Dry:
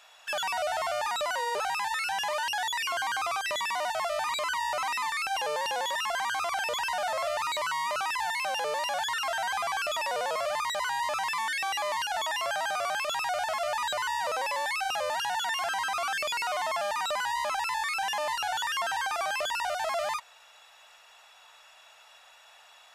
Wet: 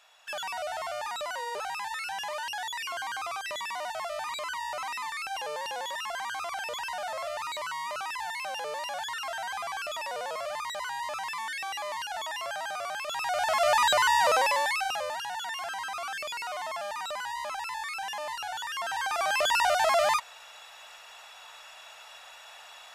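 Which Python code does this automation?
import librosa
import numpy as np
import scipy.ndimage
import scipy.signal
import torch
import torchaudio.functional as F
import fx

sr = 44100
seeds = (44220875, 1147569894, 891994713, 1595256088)

y = fx.gain(x, sr, db=fx.line((13.04, -4.5), (13.7, 7.5), (14.34, 7.5), (15.22, -5.0), (18.69, -5.0), (19.55, 6.5)))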